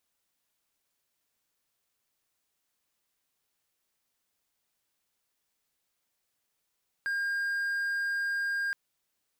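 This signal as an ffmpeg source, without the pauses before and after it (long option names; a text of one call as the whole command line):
ffmpeg -f lavfi -i "aevalsrc='0.0501*(1-4*abs(mod(1610*t+0.25,1)-0.5))':duration=1.67:sample_rate=44100" out.wav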